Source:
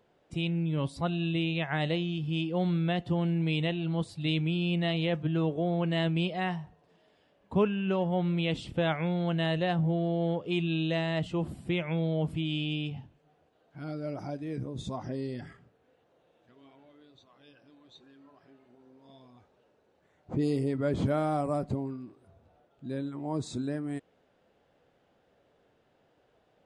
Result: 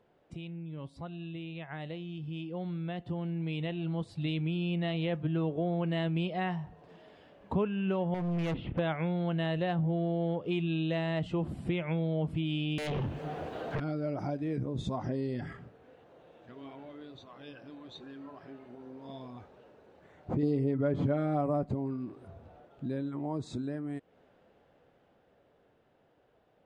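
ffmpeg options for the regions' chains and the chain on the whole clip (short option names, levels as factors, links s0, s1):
-filter_complex "[0:a]asettb=1/sr,asplit=3[s0][s1][s2];[s0]atrim=end=8.144[s3];[s1]atrim=start=8.14:end=8.79,asetpts=PTS-STARTPTS,afade=t=in:d=0.004:c=qsin,afade=t=out:st=0.646:d=0.004:c=qsin,lowpass=f=2600:w=0.5412,lowpass=f=2600:w=1.3066,asoftclip=type=hard:threshold=0.0251[s4];[s2]atrim=start=8.786[s5];[s3][s4]acrossfade=d=0.004:c1=hsin:c2=qsin[s6];[s6][s5]acrossfade=d=0.004:c1=qsin:c2=hsin,asettb=1/sr,asplit=3[s7][s8][s9];[s7]atrim=end=12.784[s10];[s8]atrim=start=12.78:end=13.8,asetpts=PTS-STARTPTS,afade=t=in:d=0.004:c=qsin,afade=t=out:st=1.016:d=0.004:c=qsin,highpass=42,acompressor=threshold=0.00562:ratio=4:attack=3.2:release=140:knee=1:detection=peak,aeval=exprs='0.0251*sin(PI/2*7.08*val(0)/0.0251)':c=same[s11];[s9]atrim=start=13.796[s12];[s10][s11]acrossfade=d=0.004:c1=hsin:c2=qsin[s13];[s13][s12]acrossfade=d=0.004:c1=qsin:c2=hsin,asettb=1/sr,asplit=3[s14][s15][s16];[s14]atrim=end=20.424[s17];[s15]atrim=start=20.42:end=21.63,asetpts=PTS-STARTPTS,afade=t=in:d=0.004:c=qsin,afade=t=out:st=1.206:d=0.004:c=qsin,highshelf=f=5500:g=-10.5,aecho=1:1:7:0.9,atrim=end_sample=53361[s18];[s16]atrim=start=21.626[s19];[s17][s18]acrossfade=d=0.004:c1=hsin:c2=qsin[s20];[s20][s19]acrossfade=d=0.004:c1=qsin:c2=hsin,acompressor=threshold=0.00562:ratio=2.5,highshelf=f=4500:g=-11.5,dynaudnorm=f=400:g=17:m=3.35"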